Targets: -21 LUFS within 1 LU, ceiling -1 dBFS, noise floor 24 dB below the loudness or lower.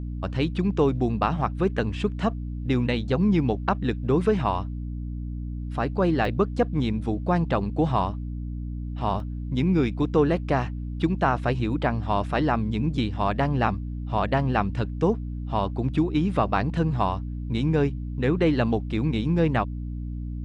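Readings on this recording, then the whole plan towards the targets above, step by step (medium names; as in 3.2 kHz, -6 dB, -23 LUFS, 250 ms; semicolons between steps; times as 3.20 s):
dropouts 2; longest dropout 1.4 ms; hum 60 Hz; highest harmonic 300 Hz; hum level -29 dBFS; loudness -25.5 LUFS; peak level -8.5 dBFS; loudness target -21.0 LUFS
-> interpolate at 6.25/9.20 s, 1.4 ms; hum notches 60/120/180/240/300 Hz; trim +4.5 dB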